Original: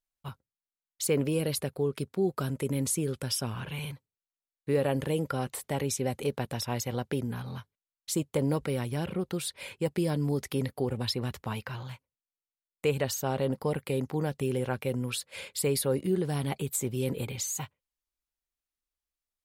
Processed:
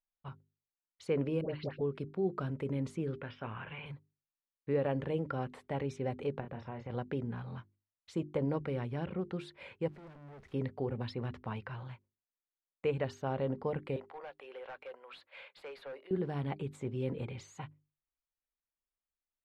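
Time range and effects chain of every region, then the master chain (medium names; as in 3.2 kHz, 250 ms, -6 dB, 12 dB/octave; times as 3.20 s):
1.41–1.81 s: steep low-pass 5 kHz + phase dispersion highs, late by 92 ms, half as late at 960 Hz
3.20–3.86 s: low-pass 2.9 kHz 24 dB/octave + tilt shelf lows -5.5 dB, about 700 Hz + doubling 19 ms -11 dB
6.40–6.90 s: low-pass 2.4 kHz + doubling 30 ms -7.5 dB + compression 4:1, threshold -33 dBFS
9.88–10.54 s: zero-crossing glitches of -25.5 dBFS + valve stage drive 45 dB, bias 0.25
13.96–16.11 s: high-pass 590 Hz 24 dB/octave + high-order bell 7.1 kHz -9.5 dB 1.1 oct + hard clipper -36.5 dBFS
whole clip: low-pass 2.2 kHz 12 dB/octave; hum notches 50/100/150/200/250/300/350/400 Hz; trim -4.5 dB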